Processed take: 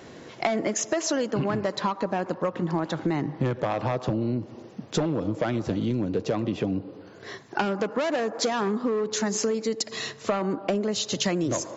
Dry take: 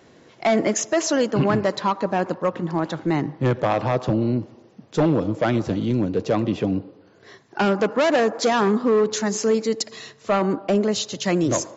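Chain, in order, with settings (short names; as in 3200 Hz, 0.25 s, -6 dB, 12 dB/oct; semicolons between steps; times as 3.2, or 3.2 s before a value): compressor 12:1, threshold -29 dBFS, peak gain reduction 15 dB; gain +6.5 dB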